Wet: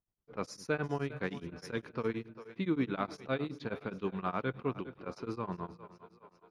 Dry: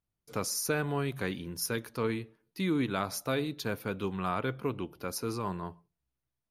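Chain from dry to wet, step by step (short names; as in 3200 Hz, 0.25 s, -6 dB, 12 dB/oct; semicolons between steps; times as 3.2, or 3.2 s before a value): low-pass opened by the level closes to 1400 Hz, open at -29 dBFS; Bessel low-pass 2800 Hz, order 2; bell 98 Hz -9 dB 0.3 oct; on a send: split-band echo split 350 Hz, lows 0.199 s, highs 0.396 s, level -14.5 dB; on the sum: beating tremolo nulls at 9.6 Hz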